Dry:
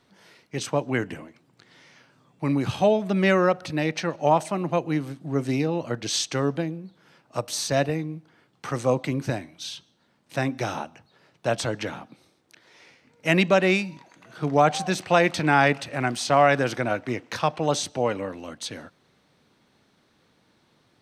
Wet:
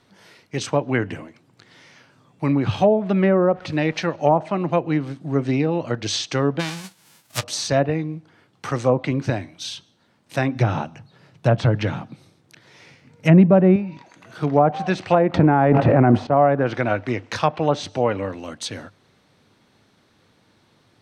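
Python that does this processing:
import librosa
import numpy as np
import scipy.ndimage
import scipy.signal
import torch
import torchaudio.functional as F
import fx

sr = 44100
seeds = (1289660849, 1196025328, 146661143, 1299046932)

y = fx.sample_gate(x, sr, floor_db=-45.0, at=(2.49, 4.06))
y = fx.envelope_flatten(y, sr, power=0.1, at=(6.59, 7.42), fade=0.02)
y = fx.peak_eq(y, sr, hz=140.0, db=11.5, octaves=1.1, at=(10.55, 13.76))
y = fx.env_flatten(y, sr, amount_pct=100, at=(15.34, 16.27))
y = fx.env_lowpass_down(y, sr, base_hz=820.0, full_db=-15.0)
y = fx.peak_eq(y, sr, hz=100.0, db=8.0, octaves=0.24)
y = y * librosa.db_to_amplitude(4.0)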